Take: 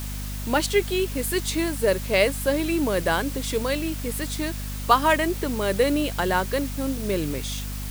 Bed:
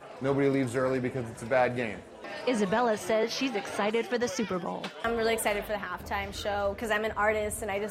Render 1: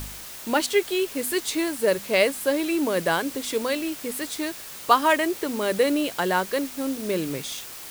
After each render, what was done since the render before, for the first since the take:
hum removal 50 Hz, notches 5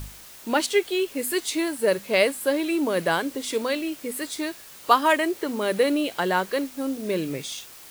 noise reduction from a noise print 6 dB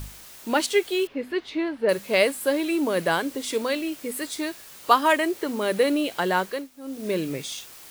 0:01.07–0:01.89: high-frequency loss of the air 310 metres
0:06.42–0:07.07: duck −13 dB, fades 0.26 s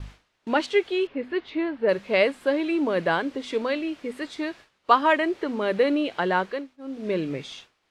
low-pass filter 3,200 Hz 12 dB per octave
downward expander −40 dBFS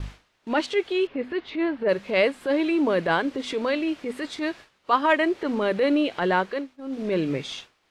in parallel at −0.5 dB: downward compressor, threshold −29 dBFS, peak gain reduction 16.5 dB
on the sum: transient designer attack −8 dB, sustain −2 dB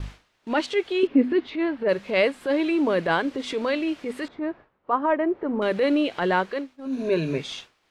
0:01.03–0:01.47: parametric band 270 Hz +14.5 dB
0:04.28–0:05.62: low-pass filter 1,100 Hz
0:06.85–0:07.38: EQ curve with evenly spaced ripples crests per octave 1.5, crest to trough 11 dB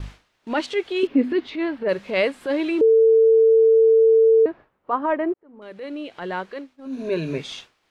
0:00.96–0:01.79: high-shelf EQ 4,500 Hz +6.5 dB
0:02.81–0:04.46: beep over 448 Hz −11 dBFS
0:05.34–0:07.43: fade in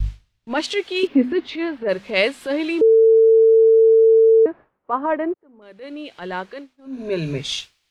in parallel at +2 dB: downward compressor, threshold −27 dBFS, peak gain reduction 13 dB
on the sum: multiband upward and downward expander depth 70%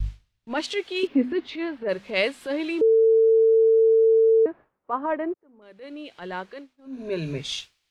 level −5 dB

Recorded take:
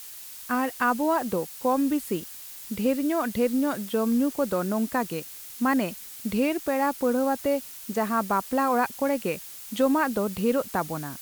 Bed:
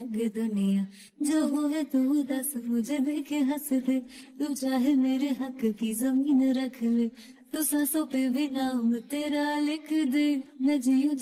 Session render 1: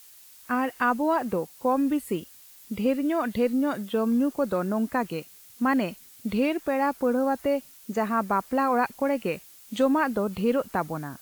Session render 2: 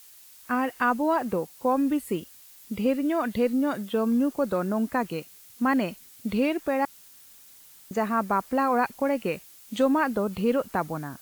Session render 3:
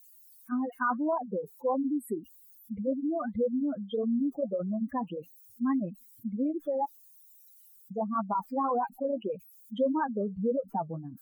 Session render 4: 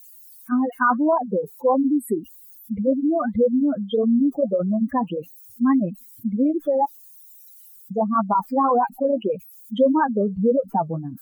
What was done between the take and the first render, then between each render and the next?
noise reduction from a noise print 9 dB
0:06.85–0:07.91: fill with room tone
expanding power law on the bin magnitudes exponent 3.7; flanger 1.7 Hz, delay 0.4 ms, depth 5.8 ms, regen −66%
level +10 dB

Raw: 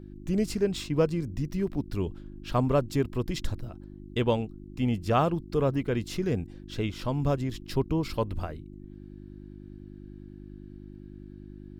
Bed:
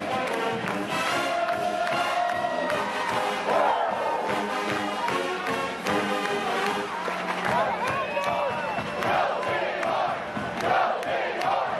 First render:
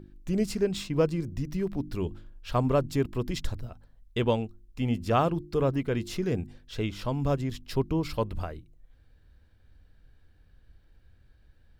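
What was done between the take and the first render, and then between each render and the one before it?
hum removal 50 Hz, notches 7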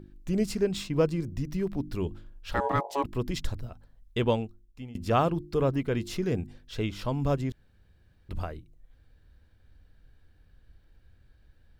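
0:02.54–0:03.04: ring modulation 700 Hz
0:04.34–0:04.95: fade out, to −22 dB
0:07.52–0:08.29: fill with room tone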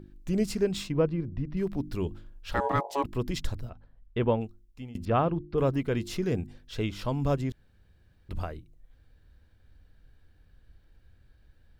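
0:00.92–0:01.57: high-frequency loss of the air 370 metres
0:03.69–0:04.40: low-pass filter 3,600 Hz → 1,700 Hz
0:05.05–0:05.58: high-frequency loss of the air 320 metres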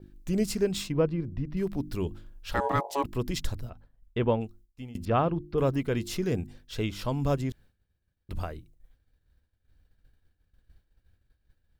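downward expander −48 dBFS
high-shelf EQ 6,500 Hz +7 dB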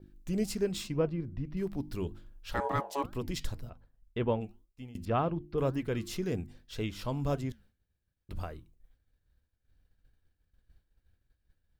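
flanger 1.9 Hz, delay 3.4 ms, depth 4.5 ms, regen −88%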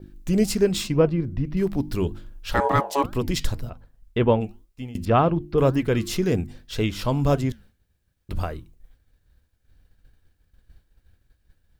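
level +11 dB

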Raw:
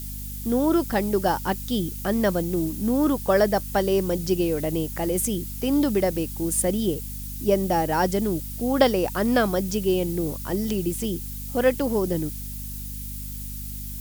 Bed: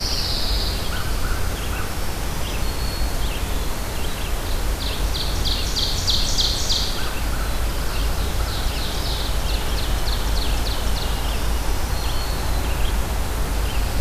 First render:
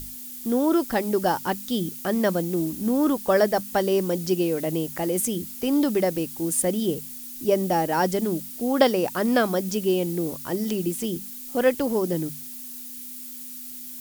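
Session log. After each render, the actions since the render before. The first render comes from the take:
mains-hum notches 50/100/150/200 Hz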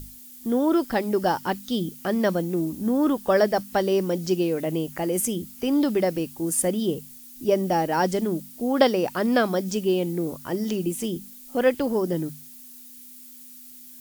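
noise reduction from a noise print 7 dB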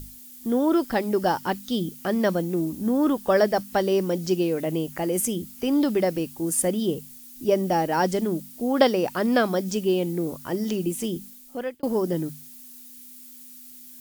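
0:11.24–0:11.83: fade out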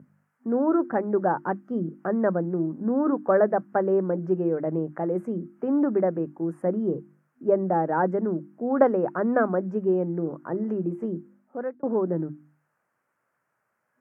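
elliptic band-pass filter 140–1,500 Hz, stop band 40 dB
mains-hum notches 50/100/150/200/250/300/350 Hz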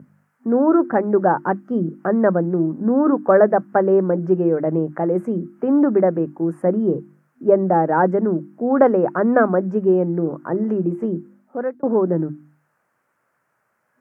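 level +7 dB
brickwall limiter −2 dBFS, peak gain reduction 3 dB

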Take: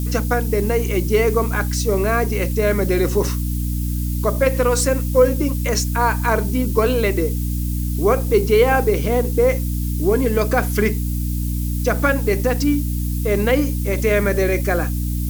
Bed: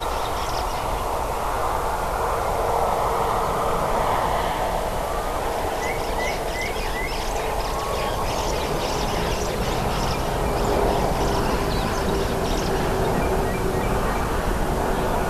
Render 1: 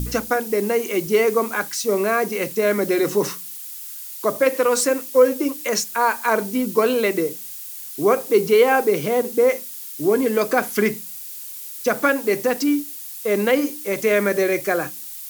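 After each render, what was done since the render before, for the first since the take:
hum removal 60 Hz, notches 5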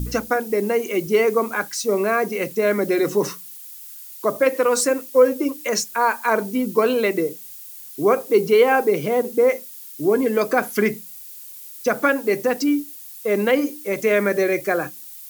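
broadband denoise 6 dB, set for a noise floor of −35 dBFS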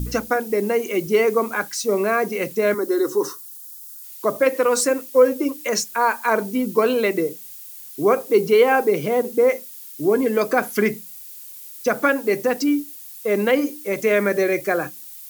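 0:02.74–0:04.04: phaser with its sweep stopped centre 640 Hz, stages 6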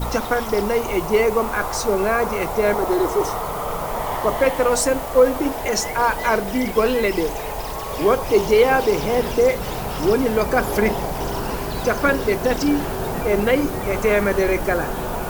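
mix in bed −3.5 dB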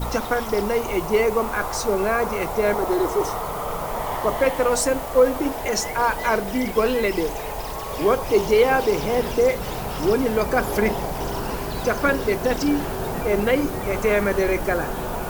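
level −2 dB

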